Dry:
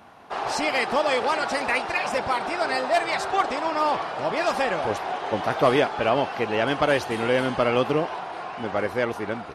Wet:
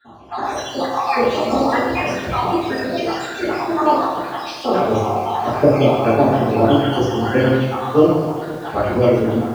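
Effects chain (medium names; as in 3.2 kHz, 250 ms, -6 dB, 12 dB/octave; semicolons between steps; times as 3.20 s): random holes in the spectrogram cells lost 69%; reverberation RT60 1.1 s, pre-delay 3 ms, DRR -15.5 dB; bit-crushed delay 129 ms, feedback 80%, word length 4-bit, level -15 dB; trim -11.5 dB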